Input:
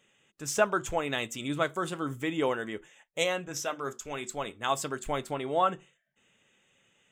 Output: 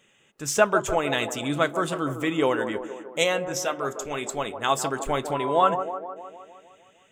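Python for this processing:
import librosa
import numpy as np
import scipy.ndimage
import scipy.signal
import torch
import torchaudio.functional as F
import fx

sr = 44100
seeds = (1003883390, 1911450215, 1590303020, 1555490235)

y = fx.echo_wet_bandpass(x, sr, ms=154, feedback_pct=61, hz=550.0, wet_db=-7.5)
y = fx.dmg_tone(y, sr, hz=1000.0, level_db=-34.0, at=(5.33, 5.74), fade=0.02)
y = y * 10.0 ** (5.5 / 20.0)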